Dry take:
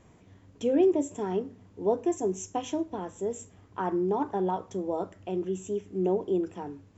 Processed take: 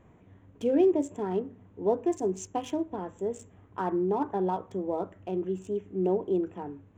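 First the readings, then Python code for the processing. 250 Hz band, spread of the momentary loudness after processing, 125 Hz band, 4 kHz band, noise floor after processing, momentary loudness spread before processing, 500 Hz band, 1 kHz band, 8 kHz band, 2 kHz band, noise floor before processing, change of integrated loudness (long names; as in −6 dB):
0.0 dB, 10 LU, 0.0 dB, −3.0 dB, −58 dBFS, 10 LU, 0.0 dB, −0.5 dB, can't be measured, −1.0 dB, −57 dBFS, 0.0 dB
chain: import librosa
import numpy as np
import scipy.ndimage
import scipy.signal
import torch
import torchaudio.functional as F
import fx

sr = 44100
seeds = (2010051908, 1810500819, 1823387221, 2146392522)

y = fx.wiener(x, sr, points=9)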